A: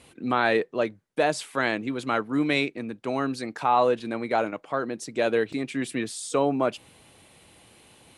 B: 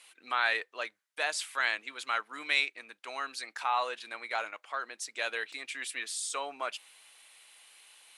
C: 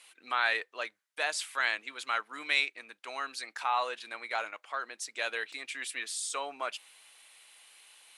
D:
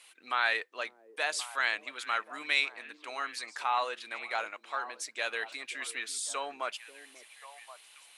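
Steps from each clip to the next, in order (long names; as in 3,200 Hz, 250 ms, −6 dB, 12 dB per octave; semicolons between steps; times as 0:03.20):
high-pass filter 1,400 Hz 12 dB per octave
no processing that can be heard
echo through a band-pass that steps 538 ms, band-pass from 320 Hz, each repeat 1.4 octaves, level −10 dB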